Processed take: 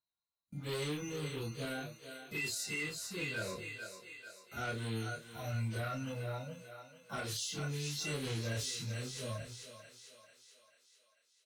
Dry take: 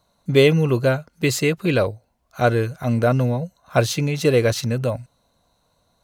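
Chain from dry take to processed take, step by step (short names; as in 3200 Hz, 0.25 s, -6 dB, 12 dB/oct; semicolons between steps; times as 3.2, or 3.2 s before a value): bin magnitudes rounded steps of 30 dB; plain phase-vocoder stretch 1.9×; gate with hold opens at -35 dBFS; on a send: thinning echo 0.442 s, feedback 54%, high-pass 410 Hz, level -10 dB; on the sum: soft clip -14 dBFS, distortion -16 dB; passive tone stack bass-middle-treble 5-5-5; limiter -31.5 dBFS, peak gain reduction 8 dB; doubler 27 ms -4 dB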